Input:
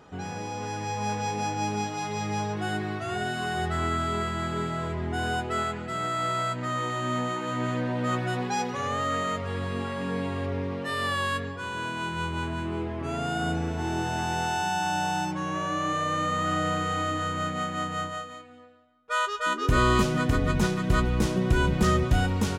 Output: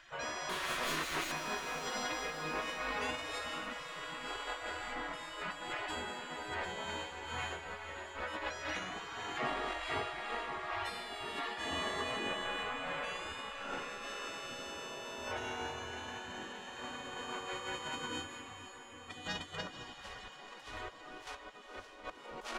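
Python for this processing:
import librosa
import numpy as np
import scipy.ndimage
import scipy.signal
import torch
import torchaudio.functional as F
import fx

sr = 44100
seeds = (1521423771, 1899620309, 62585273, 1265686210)

y = fx.self_delay(x, sr, depth_ms=0.51, at=(0.49, 1.32))
y = fx.over_compress(y, sr, threshold_db=-32.0, ratio=-0.5)
y = fx.high_shelf(y, sr, hz=3900.0, db=-11.5)
y = fx.echo_diffused(y, sr, ms=510, feedback_pct=64, wet_db=-9.0)
y = fx.spec_gate(y, sr, threshold_db=-15, keep='weak')
y = y * librosa.db_to_amplitude(3.5)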